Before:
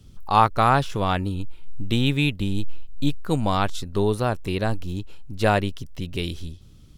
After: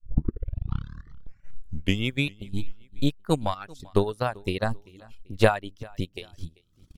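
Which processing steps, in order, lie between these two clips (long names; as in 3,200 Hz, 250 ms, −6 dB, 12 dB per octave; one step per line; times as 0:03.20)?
turntable start at the beginning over 2.30 s
transient designer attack +11 dB, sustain −8 dB
square-wave tremolo 0.79 Hz, depth 65%, duty 80%
reverb reduction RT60 0.94 s
on a send: repeating echo 390 ms, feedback 36%, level −24 dB
on the sum: level −5.5 dB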